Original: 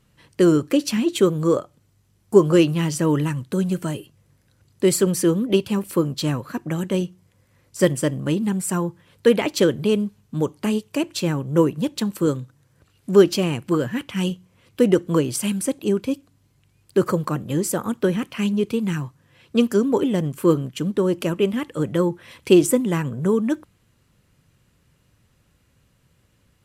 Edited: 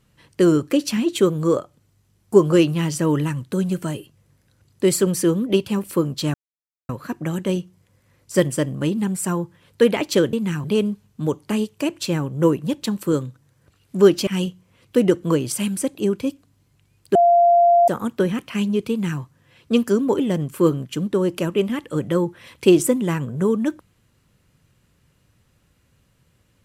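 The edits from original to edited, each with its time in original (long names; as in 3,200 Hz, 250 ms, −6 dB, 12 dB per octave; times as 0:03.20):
0:06.34: splice in silence 0.55 s
0:13.41–0:14.11: remove
0:16.99–0:17.72: beep over 692 Hz −10.5 dBFS
0:18.74–0:19.05: duplicate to 0:09.78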